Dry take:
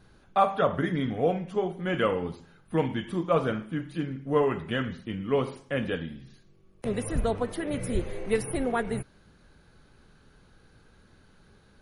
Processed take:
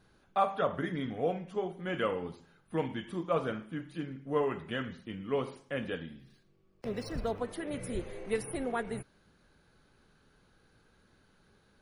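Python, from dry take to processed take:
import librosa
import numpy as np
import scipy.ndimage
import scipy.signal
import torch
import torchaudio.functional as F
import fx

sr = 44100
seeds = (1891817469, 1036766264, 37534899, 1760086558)

y = fx.low_shelf(x, sr, hz=140.0, db=-6.0)
y = fx.resample_linear(y, sr, factor=3, at=(6.2, 7.4))
y = y * 10.0 ** (-5.5 / 20.0)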